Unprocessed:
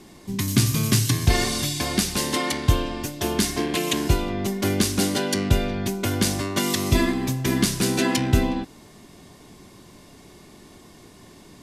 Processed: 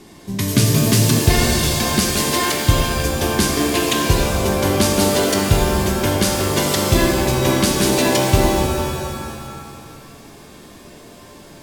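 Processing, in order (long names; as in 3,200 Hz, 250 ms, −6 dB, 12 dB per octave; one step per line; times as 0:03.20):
reverb with rising layers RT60 2.1 s, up +7 semitones, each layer −2 dB, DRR 3 dB
level +3 dB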